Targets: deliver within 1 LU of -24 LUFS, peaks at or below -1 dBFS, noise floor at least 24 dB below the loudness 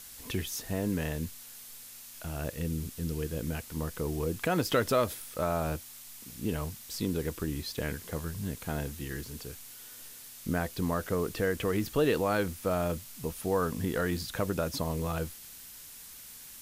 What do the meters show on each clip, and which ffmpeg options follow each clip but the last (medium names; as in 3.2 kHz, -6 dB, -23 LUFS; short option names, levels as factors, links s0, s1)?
noise floor -48 dBFS; noise floor target -57 dBFS; loudness -32.5 LUFS; peak level -14.5 dBFS; loudness target -24.0 LUFS
-> -af "afftdn=nr=9:nf=-48"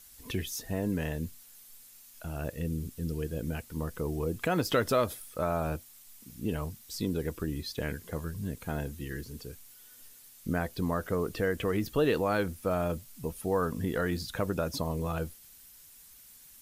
noise floor -54 dBFS; noise floor target -57 dBFS
-> -af "afftdn=nr=6:nf=-54"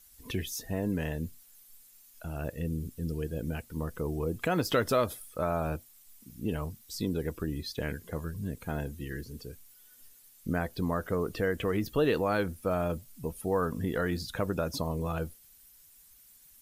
noise floor -58 dBFS; loudness -33.0 LUFS; peak level -15.0 dBFS; loudness target -24.0 LUFS
-> -af "volume=2.82"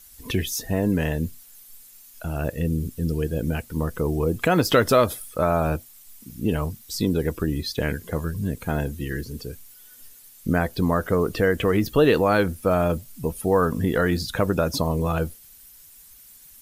loudness -24.0 LUFS; peak level -6.0 dBFS; noise floor -49 dBFS